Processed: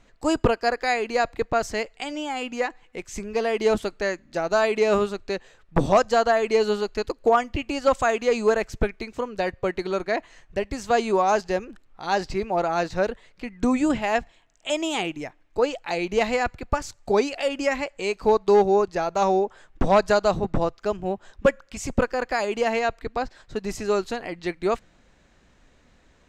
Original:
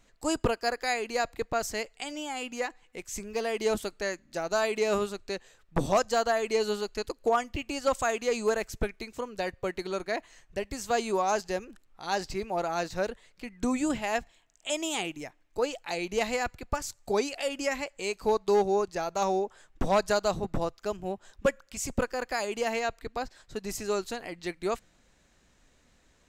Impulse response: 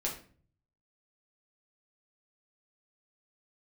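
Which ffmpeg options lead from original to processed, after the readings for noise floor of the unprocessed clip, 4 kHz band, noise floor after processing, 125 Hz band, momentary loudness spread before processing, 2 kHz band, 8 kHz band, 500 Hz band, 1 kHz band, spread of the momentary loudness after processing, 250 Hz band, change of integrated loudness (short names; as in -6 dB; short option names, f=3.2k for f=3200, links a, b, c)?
-65 dBFS, +3.0 dB, -59 dBFS, +7.0 dB, 10 LU, +5.5 dB, -1.0 dB, +7.0 dB, +6.5 dB, 11 LU, +7.0 dB, +6.5 dB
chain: -af "aemphasis=mode=reproduction:type=50fm,volume=6.5dB"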